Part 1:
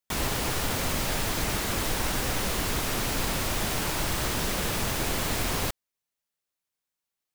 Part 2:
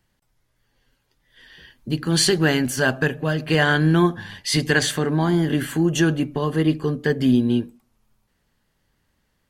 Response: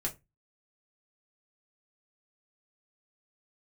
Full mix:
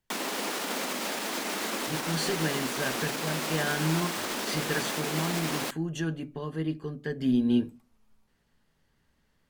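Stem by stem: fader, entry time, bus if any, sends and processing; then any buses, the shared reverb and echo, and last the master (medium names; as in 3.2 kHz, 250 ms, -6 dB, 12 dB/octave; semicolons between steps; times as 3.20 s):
+1.0 dB, 0.00 s, no send, peak limiter -21 dBFS, peak gain reduction 6.5 dB; steep high-pass 200 Hz 48 dB/octave
7.11 s -15 dB -> 7.64 s -4 dB, 0.00 s, send -11.5 dB, none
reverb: on, RT60 0.20 s, pre-delay 4 ms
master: treble shelf 10 kHz -6.5 dB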